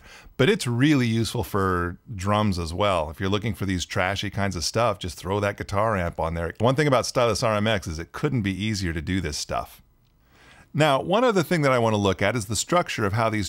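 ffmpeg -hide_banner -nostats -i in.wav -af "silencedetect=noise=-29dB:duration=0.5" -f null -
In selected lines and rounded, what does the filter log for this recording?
silence_start: 9.63
silence_end: 10.75 | silence_duration: 1.12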